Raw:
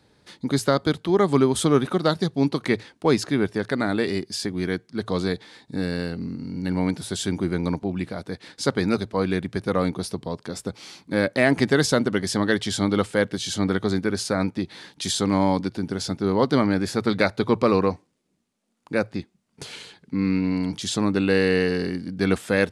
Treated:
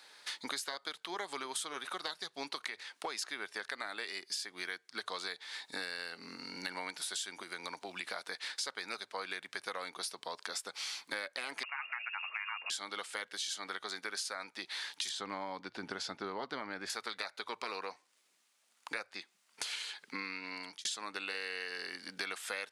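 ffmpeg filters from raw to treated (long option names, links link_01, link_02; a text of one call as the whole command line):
ffmpeg -i in.wav -filter_complex "[0:a]asettb=1/sr,asplit=3[link_01][link_02][link_03];[link_01]atrim=end=2.674[link_04];[link_02]atrim=start=2.67:end=3.19,asetpts=PTS-STARTPTS,afade=type=in:duration=0.004:curve=qsin,afade=type=out:start_time=0.516:duration=0.004:curve=qsin,acompressor=threshold=-21dB:ratio=6:attack=3.2:release=140:knee=1:detection=peak[link_05];[link_03]atrim=start=3.186[link_06];[link_04][link_05]acrossfade=duration=0.004:curve1=hsin:curve2=qsin[link_07];[link_07][link_06]acrossfade=duration=0.004:curve1=qsin:curve2=hsin,asettb=1/sr,asplit=3[link_08][link_09][link_10];[link_08]atrim=end=7.424[link_11];[link_09]atrim=start=7.42:end=8.07,asetpts=PTS-STARTPTS,afade=type=in:duration=0.004:curve=qsin,afade=type=out:start_time=0.646:duration=0.004:curve=qsin,acrossover=split=110|3300[link_12][link_13][link_14];[link_12]acompressor=threshold=-41dB:ratio=4[link_15];[link_13]acompressor=threshold=-32dB:ratio=4[link_16];[link_14]acompressor=threshold=-53dB:ratio=4[link_17];[link_15][link_16][link_17]amix=inputs=3:normalize=0[link_18];[link_10]atrim=start=8.066[link_19];[link_11][link_18]acrossfade=duration=0.004:curve1=hsin:curve2=qsin[link_20];[link_20][link_19]acrossfade=duration=0.004:curve1=qsin:curve2=hsin,asettb=1/sr,asplit=3[link_21][link_22][link_23];[link_21]atrim=end=11.634[link_24];[link_22]atrim=start=11.63:end=12.7,asetpts=PTS-STARTPTS,afade=type=in:duration=0.004:curve=qsin,afade=type=out:start_time=1.066:duration=0.004:curve=qsin,lowpass=frequency=2500:width_type=q:width=0.5098,lowpass=frequency=2500:width_type=q:width=0.6013,lowpass=frequency=2500:width_type=q:width=0.9,lowpass=frequency=2500:width_type=q:width=2.563,afreqshift=-2900[link_25];[link_23]atrim=start=12.696[link_26];[link_24][link_25]acrossfade=duration=0.004:curve1=hsin:curve2=qsin[link_27];[link_27][link_26]acrossfade=duration=0.004:curve1=qsin:curve2=hsin,asettb=1/sr,asplit=3[link_28][link_29][link_30];[link_28]atrim=end=15.094[link_31];[link_29]atrim=start=15.09:end=16.9,asetpts=PTS-STARTPTS,afade=type=in:duration=0.004:curve=qsin,afade=type=out:start_time=1.806:duration=0.004:curve=qsin,aemphasis=mode=reproduction:type=riaa[link_32];[link_30]atrim=start=16.896[link_33];[link_31][link_32]acrossfade=duration=0.004:curve1=hsin:curve2=qsin[link_34];[link_34][link_33]acrossfade=duration=0.004:curve1=qsin:curve2=hsin,asplit=2[link_35][link_36];[link_35]atrim=end=20.85,asetpts=PTS-STARTPTS,afade=type=out:start_time=20.21:duration=0.64[link_37];[link_36]atrim=start=20.85,asetpts=PTS-STARTPTS,afade=type=in:duration=0.004:curve=hsin[link_38];[link_37][link_38]concat=n=2:v=0:a=1,highpass=1200,afftfilt=real='re*lt(hypot(re,im),0.2)':imag='im*lt(hypot(re,im),0.2)':win_size=1024:overlap=0.75,acompressor=threshold=-46dB:ratio=8,volume=9dB" out.wav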